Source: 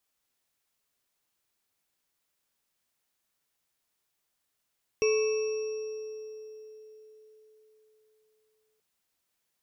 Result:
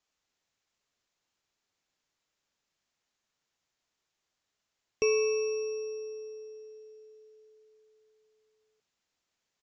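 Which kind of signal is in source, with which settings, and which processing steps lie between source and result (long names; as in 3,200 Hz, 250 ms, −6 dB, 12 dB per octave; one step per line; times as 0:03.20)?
inharmonic partials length 3.78 s, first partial 433 Hz, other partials 1,100/2,290/2,630/5,610 Hz, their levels −18.5/−20/−10/−12 dB, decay 4.27 s, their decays 2.06/1.18/2.18/2.78 s, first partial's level −21.5 dB
downsampling to 16,000 Hz
AAC 64 kbit/s 44,100 Hz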